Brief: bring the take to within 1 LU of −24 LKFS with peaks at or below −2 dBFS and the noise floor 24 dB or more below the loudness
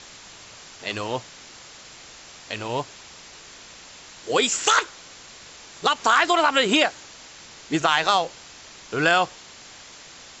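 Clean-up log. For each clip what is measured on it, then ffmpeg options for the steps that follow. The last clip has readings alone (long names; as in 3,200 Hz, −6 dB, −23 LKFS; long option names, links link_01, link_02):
background noise floor −45 dBFS; target noise floor −46 dBFS; integrated loudness −22.0 LKFS; sample peak −5.0 dBFS; target loudness −24.0 LKFS
→ -af "afftdn=noise_reduction=6:noise_floor=-45"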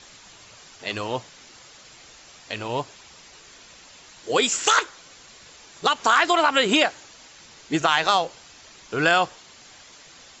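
background noise floor −49 dBFS; integrated loudness −22.0 LKFS; sample peak −5.5 dBFS; target loudness −24.0 LKFS
→ -af "volume=-2dB"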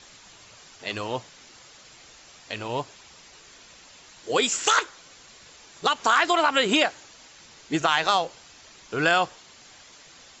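integrated loudness −24.0 LKFS; sample peak −7.5 dBFS; background noise floor −51 dBFS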